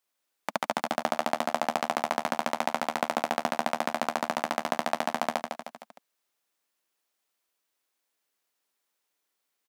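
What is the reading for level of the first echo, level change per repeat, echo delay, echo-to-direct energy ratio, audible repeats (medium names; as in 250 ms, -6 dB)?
-6.0 dB, -6.0 dB, 154 ms, -4.5 dB, 4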